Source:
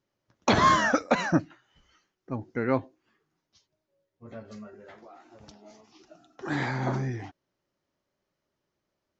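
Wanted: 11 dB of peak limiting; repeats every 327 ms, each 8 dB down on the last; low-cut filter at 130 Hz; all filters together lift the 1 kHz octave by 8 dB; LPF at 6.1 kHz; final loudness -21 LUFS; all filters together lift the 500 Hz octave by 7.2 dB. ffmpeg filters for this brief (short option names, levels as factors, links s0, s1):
-af "highpass=130,lowpass=6100,equalizer=f=500:t=o:g=6.5,equalizer=f=1000:t=o:g=7.5,alimiter=limit=0.211:level=0:latency=1,aecho=1:1:327|654|981|1308|1635:0.398|0.159|0.0637|0.0255|0.0102,volume=2"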